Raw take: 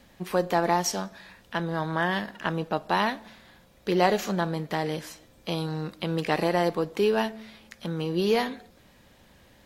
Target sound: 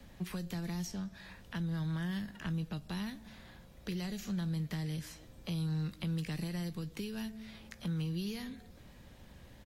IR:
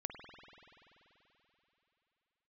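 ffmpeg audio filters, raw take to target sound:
-filter_complex "[0:a]acrossover=split=400|2200|5200[link_01][link_02][link_03][link_04];[link_01]acompressor=threshold=-30dB:ratio=4[link_05];[link_02]acompressor=threshold=-39dB:ratio=4[link_06];[link_03]acompressor=threshold=-51dB:ratio=4[link_07];[link_04]acompressor=threshold=-48dB:ratio=4[link_08];[link_05][link_06][link_07][link_08]amix=inputs=4:normalize=0,lowshelf=frequency=190:gain=10.5,acrossover=split=190|1500[link_09][link_10][link_11];[link_10]acompressor=threshold=-46dB:ratio=5[link_12];[link_11]asplit=2[link_13][link_14];[link_14]adelay=18,volume=-12dB[link_15];[link_13][link_15]amix=inputs=2:normalize=0[link_16];[link_09][link_12][link_16]amix=inputs=3:normalize=0,volume=-3.5dB"

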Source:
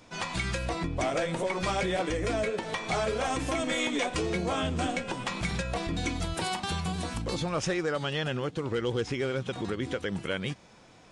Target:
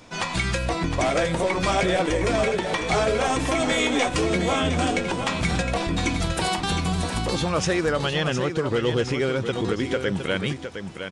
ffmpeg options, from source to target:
ffmpeg -i in.wav -af "aecho=1:1:712:0.398,volume=6.5dB" out.wav

